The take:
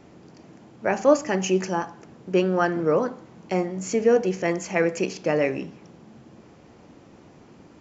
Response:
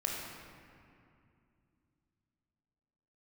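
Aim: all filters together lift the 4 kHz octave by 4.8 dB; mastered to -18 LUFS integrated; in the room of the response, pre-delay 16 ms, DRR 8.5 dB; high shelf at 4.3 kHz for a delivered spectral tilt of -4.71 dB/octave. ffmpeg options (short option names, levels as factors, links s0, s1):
-filter_complex "[0:a]equalizer=f=4000:t=o:g=5.5,highshelf=f=4300:g=3,asplit=2[s0][s1];[1:a]atrim=start_sample=2205,adelay=16[s2];[s1][s2]afir=irnorm=-1:irlink=0,volume=0.224[s3];[s0][s3]amix=inputs=2:normalize=0,volume=1.78"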